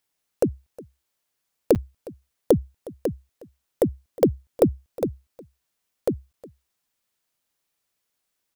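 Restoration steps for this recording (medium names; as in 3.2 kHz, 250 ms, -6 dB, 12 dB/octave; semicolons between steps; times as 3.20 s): interpolate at 1.75/6.33 s, 8.1 ms; inverse comb 362 ms -20.5 dB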